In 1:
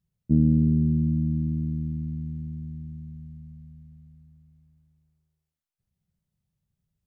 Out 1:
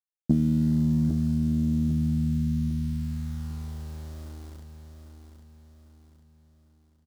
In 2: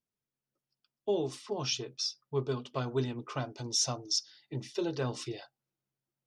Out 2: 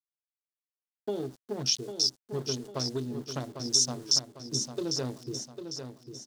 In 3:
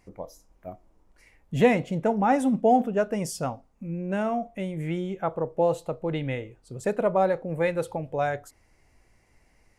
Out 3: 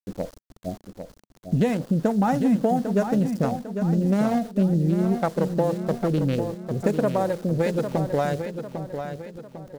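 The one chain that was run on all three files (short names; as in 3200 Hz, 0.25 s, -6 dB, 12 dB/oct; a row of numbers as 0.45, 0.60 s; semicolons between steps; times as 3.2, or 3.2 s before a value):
Wiener smoothing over 41 samples; compressor 12:1, threshold -31 dBFS; sample gate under -53.5 dBFS; EQ curve 120 Hz 0 dB, 210 Hz +6 dB, 370 Hz +2 dB, 1600 Hz +1 dB, 2400 Hz -2 dB, 4400 Hz +7 dB; on a send: feedback echo 0.8 s, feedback 44%, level -8 dB; on the sum: dynamic EQ 8400 Hz, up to +6 dB, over -54 dBFS, Q 0.73; normalise peaks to -9 dBFS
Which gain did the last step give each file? +8.5, +0.5, +9.5 dB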